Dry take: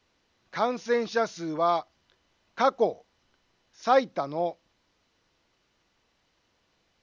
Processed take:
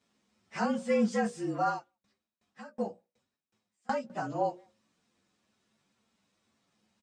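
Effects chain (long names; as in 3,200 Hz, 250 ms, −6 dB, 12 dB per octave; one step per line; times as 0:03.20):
partials spread apart or drawn together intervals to 110%
high-pass filter 79 Hz
parametric band 210 Hz +13 dB 0.48 octaves
mains-hum notches 60/120/180/240/300/360/420/480/540/600 Hz
brickwall limiter −18 dBFS, peak gain reduction 6 dB
flanger 1.2 Hz, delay 6.8 ms, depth 3.6 ms, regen −46%
far-end echo of a speakerphone 180 ms, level −30 dB
0:01.67–0:04.10: tremolo with a ramp in dB decaying 2.7 Hz, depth 29 dB
level +2.5 dB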